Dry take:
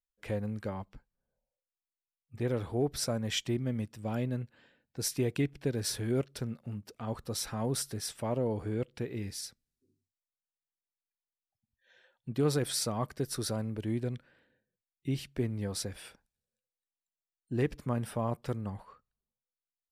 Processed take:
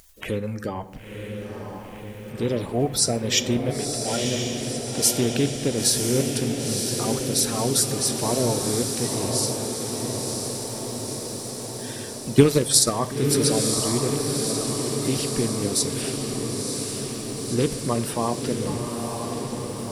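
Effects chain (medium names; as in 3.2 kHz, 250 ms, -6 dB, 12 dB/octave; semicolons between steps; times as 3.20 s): coarse spectral quantiser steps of 30 dB; on a send at -12.5 dB: reverberation RT60 0.85 s, pre-delay 4 ms; 12.33–12.91 s: on the sum: transient shaper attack +11 dB, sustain -4 dB; in parallel at -0.5 dB: upward compressor, threshold -34 dBFS; 3.70–4.25 s: on the sum: frequency weighting A; wow and flutter 25 cents; treble shelf 3.4 kHz +9 dB; echo that smears into a reverb 994 ms, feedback 71%, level -4.5 dB; trim +1.5 dB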